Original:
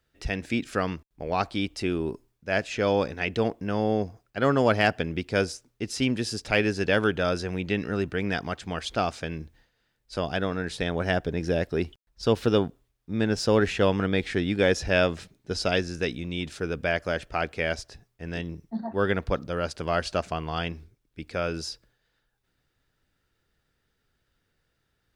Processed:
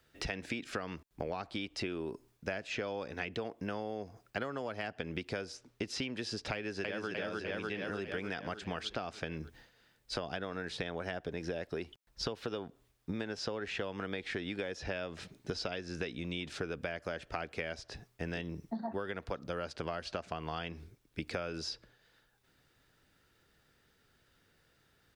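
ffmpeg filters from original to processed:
-filter_complex "[0:a]asplit=2[a][b];[b]afade=t=in:st=6.54:d=0.01,afade=t=out:st=7.09:d=0.01,aecho=0:1:300|600|900|1200|1500|1800|2100|2400:1|0.55|0.3025|0.166375|0.0915063|0.0503284|0.0276806|0.0152244[c];[a][c]amix=inputs=2:normalize=0,acrossover=split=390|5500[d][e][f];[d]acompressor=threshold=-33dB:ratio=4[g];[e]acompressor=threshold=-26dB:ratio=4[h];[f]acompressor=threshold=-59dB:ratio=4[i];[g][h][i]amix=inputs=3:normalize=0,lowshelf=f=70:g=-10,acompressor=threshold=-40dB:ratio=16,volume=6dB"

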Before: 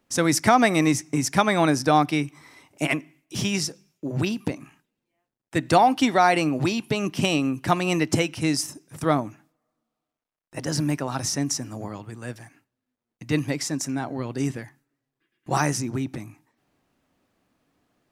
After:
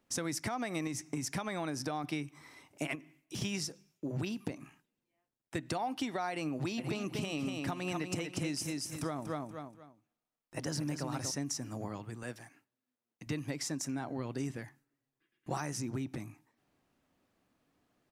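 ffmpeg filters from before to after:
-filter_complex "[0:a]asettb=1/sr,asplit=3[a][b][c];[a]atrim=end=0.874[d];[b]atrim=start=0.87:end=2.04,asetpts=PTS-STARTPTS,afade=t=in:d=0.004:c=qsin,afade=t=out:st=1.166:d=0.004:c=qsin,acompressor=threshold=-24dB:ratio=2:attack=3.2:release=140:knee=1:detection=peak[e];[c]atrim=start=2.036[f];[d][e]acrossfade=d=0.004:c1=hsin:c2=qsin[g];[g][f]acrossfade=d=0.004:c1=qsin:c2=hsin,asettb=1/sr,asplit=3[h][i][j];[h]atrim=end=2.954[k];[i]atrim=start=2.95:end=3.42,asetpts=PTS-STARTPTS,afade=t=in:d=0.004:c=qsin,afade=t=out:st=0.466:d=0.004:c=qsin,acompressor=threshold=-30dB:ratio=6:attack=3.2:release=140:knee=1:detection=peak[l];[j]atrim=start=3.416[m];[k][l]acrossfade=d=0.004:c1=hsin:c2=qsin[n];[n][m]acrossfade=d=0.004:c1=qsin:c2=hsin,asplit=3[o][p][q];[o]afade=t=out:st=6.77:d=0.02[r];[p]aecho=1:1:239|478|717:0.501|0.13|0.0339,afade=t=in:st=6.77:d=0.02,afade=t=out:st=11.3:d=0.02[s];[q]afade=t=in:st=11.3:d=0.02[t];[r][s][t]amix=inputs=3:normalize=0,asettb=1/sr,asplit=3[u][v][w];[u]atrim=end=12.234[x];[v]atrim=start=12.23:end=13.27,asetpts=PTS-STARTPTS,afade=t=in:d=0.004:c=qsin,afade=t=out:st=1.036:d=0.004:c=qsin,highpass=f=200:p=1[y];[w]atrim=start=13.266[z];[x][y]acrossfade=d=0.004:c1=hsin:c2=qsin[aa];[aa][z]acrossfade=d=0.004:c1=qsin:c2=hsin,alimiter=limit=-11.5dB:level=0:latency=1:release=202,acompressor=threshold=-28dB:ratio=4,volume=-5.5dB"

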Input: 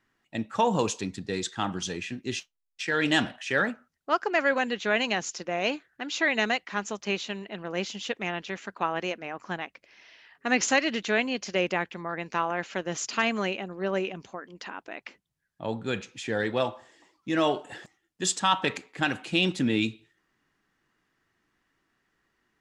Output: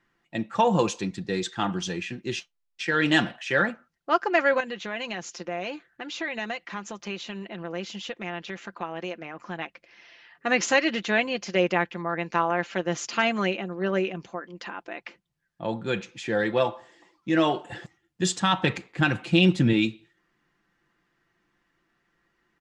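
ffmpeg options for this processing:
-filter_complex "[0:a]asettb=1/sr,asplit=3[a][b][c];[a]atrim=end=4.604[d];[b]atrim=start=4.6:end=9.59,asetpts=PTS-STARTPTS,afade=t=in:d=0.004:c=qsin,afade=t=out:st=4.986:d=0.004:c=qsin,acompressor=threshold=-36dB:ratio=2:attack=3.2:release=140:knee=1:detection=peak[e];[c]atrim=start=9.586[f];[d][e]acrossfade=d=0.004:c1=hsin:c2=qsin[g];[g][f]acrossfade=d=0.004:c1=qsin:c2=hsin,asettb=1/sr,asplit=3[h][i][j];[h]atrim=end=17.704[k];[i]atrim=start=17.7:end=19.73,asetpts=PTS-STARTPTS,afade=t=in:d=0.004:c=qsin,afade=t=out:st=2.026:d=0.004:c=qsin,equalizer=f=94:w=1:g=13[l];[j]atrim=start=19.726[m];[k][l]acrossfade=d=0.004:c1=hsin:c2=qsin[n];[n][m]acrossfade=d=0.004:c1=qsin:c2=hsin,highshelf=f=7.4k:g=-11,aecho=1:1:5.8:0.46,volume=2dB"

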